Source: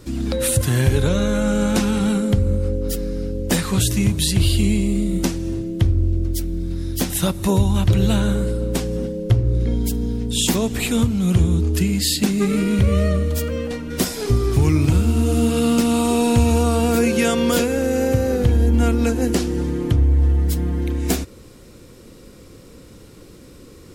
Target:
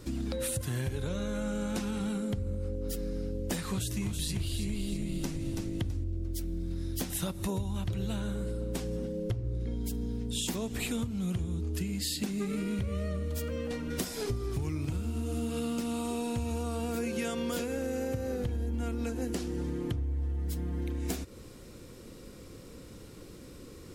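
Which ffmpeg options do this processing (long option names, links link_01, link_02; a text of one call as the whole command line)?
ffmpeg -i in.wav -filter_complex "[0:a]asettb=1/sr,asplit=3[link_01][link_02][link_03];[link_01]atrim=end=3.694[link_04];[link_02]atrim=start=3.69:end=6.04,asetpts=PTS-STARTPTS,afade=type=in:duration=0.004:curve=qsin,afade=type=out:start_time=2.346:duration=0.004:curve=qsin,asplit=6[link_05][link_06][link_07][link_08][link_09][link_10];[link_06]adelay=329,afreqshift=-52,volume=-6dB[link_11];[link_07]adelay=658,afreqshift=-104,volume=-13.1dB[link_12];[link_08]adelay=987,afreqshift=-156,volume=-20.3dB[link_13];[link_09]adelay=1316,afreqshift=-208,volume=-27.4dB[link_14];[link_10]adelay=1645,afreqshift=-260,volume=-34.5dB[link_15];[link_05][link_11][link_12][link_13][link_14][link_15]amix=inputs=6:normalize=0,atrim=end_sample=103635[link_16];[link_03]atrim=start=6.036[link_17];[link_04][link_16]acrossfade=duration=0.004:curve1=hsin:curve2=qsin[link_18];[link_18][link_17]acrossfade=duration=0.004:curve1=qsin:curve2=hsin,acompressor=threshold=-26dB:ratio=5,volume=-5dB" out.wav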